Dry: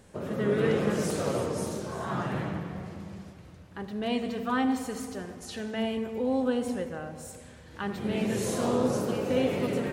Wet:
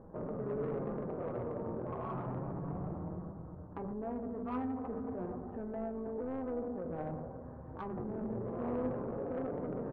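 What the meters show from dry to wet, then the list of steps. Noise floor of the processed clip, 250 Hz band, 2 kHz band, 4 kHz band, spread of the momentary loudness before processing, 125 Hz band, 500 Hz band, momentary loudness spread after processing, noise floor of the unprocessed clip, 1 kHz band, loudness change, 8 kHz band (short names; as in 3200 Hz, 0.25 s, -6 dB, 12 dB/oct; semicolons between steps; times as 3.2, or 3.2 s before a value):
-48 dBFS, -9.0 dB, -19.0 dB, under -30 dB, 15 LU, -7.0 dB, -9.0 dB, 6 LU, -50 dBFS, -8.5 dB, -9.5 dB, under -40 dB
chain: steep low-pass 1200 Hz 36 dB/oct; notches 50/100/150/200 Hz; in parallel at +2 dB: negative-ratio compressor -40 dBFS, ratio -1; on the sum: soft clip -22.5 dBFS, distortion -16 dB; flange 0.3 Hz, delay 6.1 ms, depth 2.6 ms, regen +68%; AM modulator 170 Hz, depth 35%; on a send: echo 0.683 s -23 dB; on the sum: gain -2.5 dB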